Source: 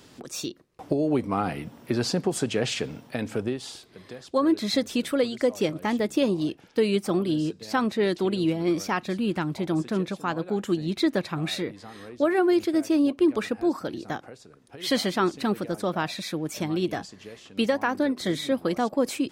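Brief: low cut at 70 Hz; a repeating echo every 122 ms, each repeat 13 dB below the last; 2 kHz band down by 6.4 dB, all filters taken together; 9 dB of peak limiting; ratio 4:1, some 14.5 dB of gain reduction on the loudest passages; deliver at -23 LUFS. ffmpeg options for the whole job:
-af "highpass=70,equalizer=f=2000:t=o:g=-8.5,acompressor=threshold=0.0158:ratio=4,alimiter=level_in=2.11:limit=0.0631:level=0:latency=1,volume=0.473,aecho=1:1:122|244|366:0.224|0.0493|0.0108,volume=7.5"

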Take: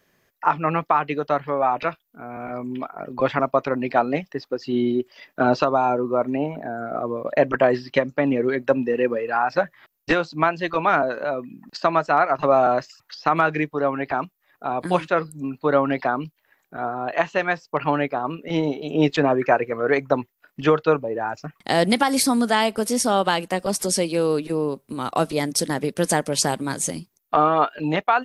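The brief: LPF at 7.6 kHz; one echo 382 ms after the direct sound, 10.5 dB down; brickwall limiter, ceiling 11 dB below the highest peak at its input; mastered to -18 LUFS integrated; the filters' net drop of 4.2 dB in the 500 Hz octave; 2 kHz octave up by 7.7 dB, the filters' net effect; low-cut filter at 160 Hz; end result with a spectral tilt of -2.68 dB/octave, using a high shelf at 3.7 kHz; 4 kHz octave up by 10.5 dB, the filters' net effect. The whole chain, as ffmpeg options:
-af "highpass=160,lowpass=7600,equalizer=f=500:t=o:g=-6,equalizer=f=2000:t=o:g=7,highshelf=f=3700:g=8,equalizer=f=4000:t=o:g=6.5,alimiter=limit=0.335:level=0:latency=1,aecho=1:1:382:0.299,volume=1.78"

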